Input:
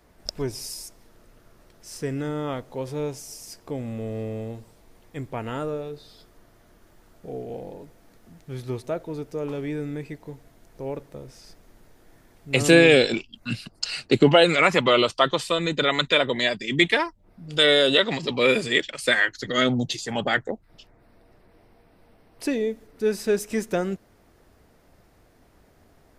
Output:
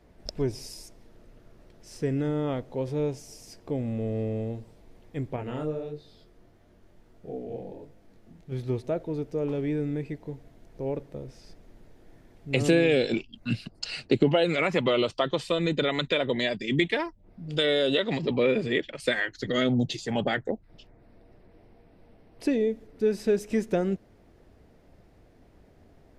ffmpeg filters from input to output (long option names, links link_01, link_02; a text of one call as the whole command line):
ffmpeg -i in.wav -filter_complex "[0:a]asettb=1/sr,asplit=3[link_01][link_02][link_03];[link_01]atrim=end=5.364[link_04];[link_02]atrim=start=5.36:end=8.52,asetpts=PTS-STARTPTS,afade=type=in:duration=0.004:curve=qsin,afade=type=out:start_time=3.156:duration=0.004:curve=qsin,flanger=delay=19.5:depth=6.4:speed=1.5[link_05];[link_03]atrim=start=8.516[link_06];[link_04][link_05]acrossfade=duration=0.004:curve1=hsin:curve2=qsin[link_07];[link_07][link_06]acrossfade=duration=0.004:curve1=qsin:curve2=hsin,asettb=1/sr,asplit=3[link_08][link_09][link_10];[link_08]atrim=end=18.194[link_11];[link_09]atrim=start=18.19:end=19,asetpts=PTS-STARTPTS,afade=type=in:duration=0.004:curve=qsin,afade=type=out:start_time=0.806:duration=0.004:curve=qsin,aemphasis=mode=reproduction:type=75fm[link_12];[link_10]atrim=start=18.996[link_13];[link_11][link_12]acrossfade=duration=0.004:curve1=hsin:curve2=qsin[link_14];[link_14][link_13]acrossfade=duration=0.004:curve1=qsin:curve2=hsin,acompressor=threshold=-21dB:ratio=2.5,lowpass=frequency=2200:poles=1,equalizer=frequency=1200:width=1.1:gain=-7,volume=2dB" out.wav